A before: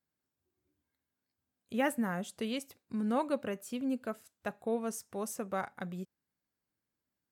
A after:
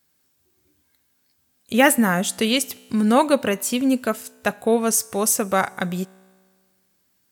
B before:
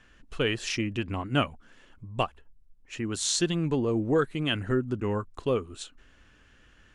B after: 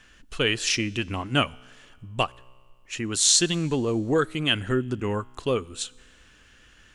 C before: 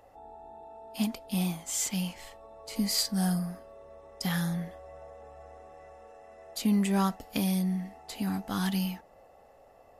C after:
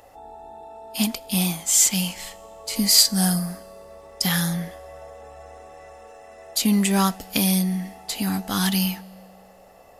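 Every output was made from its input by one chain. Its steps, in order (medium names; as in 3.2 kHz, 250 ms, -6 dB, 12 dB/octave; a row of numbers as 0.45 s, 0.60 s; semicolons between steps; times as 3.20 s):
treble shelf 2.4 kHz +9.5 dB; feedback comb 63 Hz, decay 1.8 s, harmonics all, mix 30%; peak normalisation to -1.5 dBFS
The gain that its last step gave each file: +17.0 dB, +4.0 dB, +8.5 dB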